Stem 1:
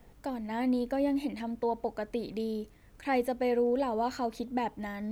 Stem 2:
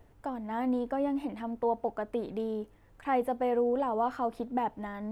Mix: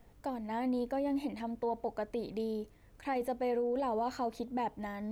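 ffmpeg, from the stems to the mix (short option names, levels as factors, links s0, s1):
-filter_complex "[0:a]volume=0.596[s0];[1:a]equalizer=f=240:t=o:w=0.81:g=-13.5,volume=23.7,asoftclip=hard,volume=0.0422,lowpass=f=1000:w=0.5412,lowpass=f=1000:w=1.3066,volume=0.422[s1];[s0][s1]amix=inputs=2:normalize=0,alimiter=level_in=1.33:limit=0.0631:level=0:latency=1:release=11,volume=0.75"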